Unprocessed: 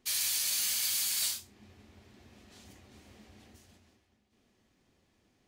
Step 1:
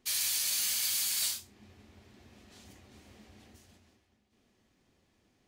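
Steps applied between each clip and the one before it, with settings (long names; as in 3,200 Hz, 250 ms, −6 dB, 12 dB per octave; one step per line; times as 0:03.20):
no processing that can be heard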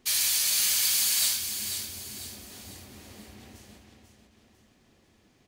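in parallel at −9.5 dB: soft clipping −34 dBFS, distortion −9 dB
on the sum: repeating echo 495 ms, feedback 41%, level −8 dB
level +4.5 dB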